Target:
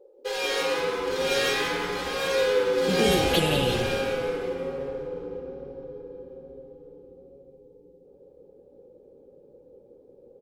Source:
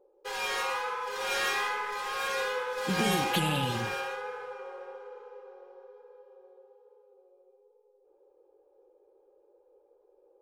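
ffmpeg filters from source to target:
-filter_complex "[0:a]equalizer=f=500:t=o:w=1:g=11,equalizer=f=1k:t=o:w=1:g=-7,equalizer=f=4k:t=o:w=1:g=5,asplit=8[a][b][c][d][e][f][g][h];[b]adelay=178,afreqshift=-120,volume=-9dB[i];[c]adelay=356,afreqshift=-240,volume=-13.7dB[j];[d]adelay=534,afreqshift=-360,volume=-18.5dB[k];[e]adelay=712,afreqshift=-480,volume=-23.2dB[l];[f]adelay=890,afreqshift=-600,volume=-27.9dB[m];[g]adelay=1068,afreqshift=-720,volume=-32.7dB[n];[h]adelay=1246,afreqshift=-840,volume=-37.4dB[o];[a][i][j][k][l][m][n][o]amix=inputs=8:normalize=0,volume=2dB"

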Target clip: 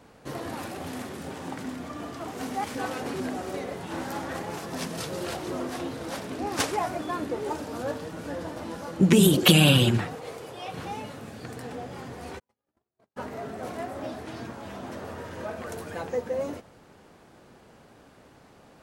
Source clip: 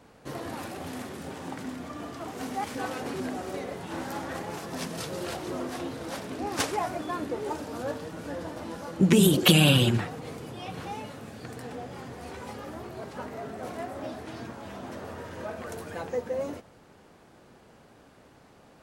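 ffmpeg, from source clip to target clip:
-filter_complex "[0:a]asettb=1/sr,asplit=3[a][b][c];[a]atrim=end=10.154[d];[b]atrim=start=10.15:end=10.74,asetpts=PTS-STARTPTS,afade=t=in:d=0.004:c=qsin,afade=t=out:st=0.586:d=0.004:c=qsin,lowshelf=f=340:t=q:w=1.5:g=-8[e];[c]atrim=start=10.736[f];[d][e]acrossfade=d=0.004:c1=hsin:c2=qsin[g];[g][f]acrossfade=d=0.004:c1=qsin:c2=hsin,asplit=3[h][i][j];[h]afade=t=out:st=12.38:d=0.02[k];[i]agate=range=-52dB:threshold=-33dB:ratio=16:detection=peak,afade=t=in:st=12.38:d=0.02,afade=t=out:st=13.16:d=0.02[l];[j]afade=t=in:st=13.16:d=0.02[m];[k][l][m]amix=inputs=3:normalize=0,volume=1.5dB"

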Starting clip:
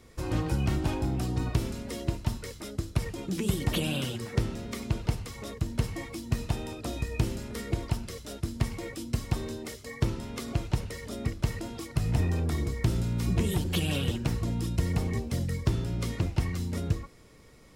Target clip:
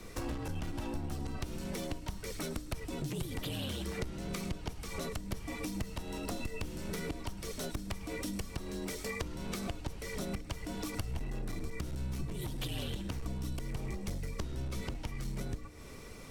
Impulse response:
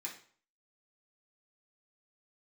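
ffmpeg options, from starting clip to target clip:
-filter_complex "[0:a]asplit=2[a][b];[1:a]atrim=start_sample=2205,adelay=114[c];[b][c]afir=irnorm=-1:irlink=0,volume=-13.5dB[d];[a][d]amix=inputs=2:normalize=0,afreqshift=-53,acompressor=threshold=-40dB:ratio=12,aeval=exprs='clip(val(0),-1,0.00841)':c=same,asetrate=48000,aresample=44100,volume=7dB"

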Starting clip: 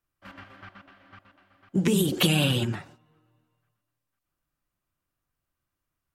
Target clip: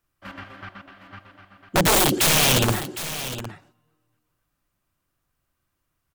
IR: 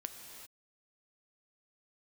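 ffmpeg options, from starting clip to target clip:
-filter_complex "[0:a]aeval=exprs='(mod(9.44*val(0)+1,2)-1)/9.44':c=same,asplit=2[a][b];[b]aecho=0:1:760:0.237[c];[a][c]amix=inputs=2:normalize=0,volume=7dB"

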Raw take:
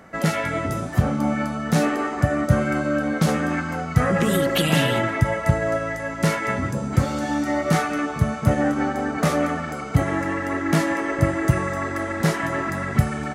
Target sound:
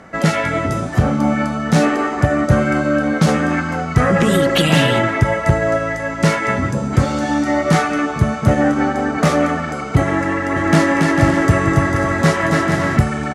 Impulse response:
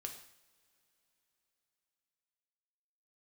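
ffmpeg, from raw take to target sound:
-filter_complex "[0:a]lowpass=8.7k,asoftclip=type=hard:threshold=-10.5dB,asplit=3[a][b][c];[a]afade=t=out:st=10.55:d=0.02[d];[b]aecho=1:1:280|448|548.8|609.3|645.6:0.631|0.398|0.251|0.158|0.1,afade=t=in:st=10.55:d=0.02,afade=t=out:st=12.96:d=0.02[e];[c]afade=t=in:st=12.96:d=0.02[f];[d][e][f]amix=inputs=3:normalize=0,volume=6dB"

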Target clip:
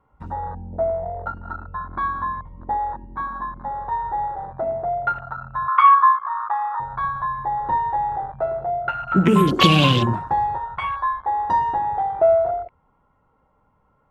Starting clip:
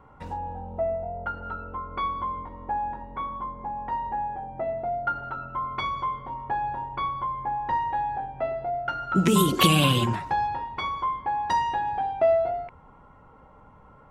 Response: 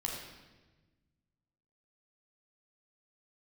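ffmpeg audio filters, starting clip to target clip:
-filter_complex "[0:a]afwtdn=0.0282,asettb=1/sr,asplit=3[a][b][c];[a]atrim=end=5.684[d];[b]atrim=start=5.68:end=6.8,asetpts=PTS-STARTPTS,afade=t=in:d=0.004:c=qsin,afade=t=out:st=1.116:d=0.004:c=qsin,highpass=f=1.2k:t=q:w=9.7[e];[c]atrim=start=6.796[f];[d][e]acrossfade=d=0.004:c1=hsin:c2=qsin[g];[g][f]acrossfade=d=0.004:c1=qsin:c2=hsin,volume=5dB"

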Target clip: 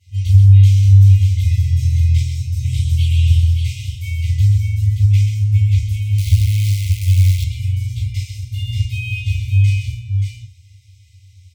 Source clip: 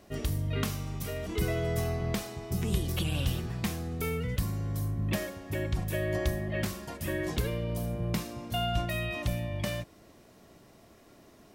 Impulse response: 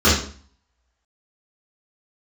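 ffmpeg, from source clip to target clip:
-filter_complex "[0:a]aecho=1:1:130|579:0.501|0.562[a];[1:a]atrim=start_sample=2205,atrim=end_sample=4410,asetrate=52920,aresample=44100[b];[a][b]afir=irnorm=-1:irlink=0,asettb=1/sr,asplit=3[c][d][e];[c]atrim=end=6.184[f];[d]atrim=start=6.18:end=7.44,asetpts=PTS-STARTPTS,afade=t=in:d=0.004:c=qsin,afade=t=out:st=1.256:d=0.004:c=qsin,acrusher=bits=3:dc=4:mix=0:aa=0.000001[g];[e]atrim=start=7.436[h];[f][g]acrossfade=d=0.004:c1=hsin:c2=qsin[i];[i][h]acrossfade=d=0.004:c1=qsin:c2=hsin,afftfilt=real='re*(1-between(b*sr/4096,130,2000))':imag='im*(1-between(b*sr/4096,130,2000))':win_size=4096:overlap=0.75,volume=-14.5dB"

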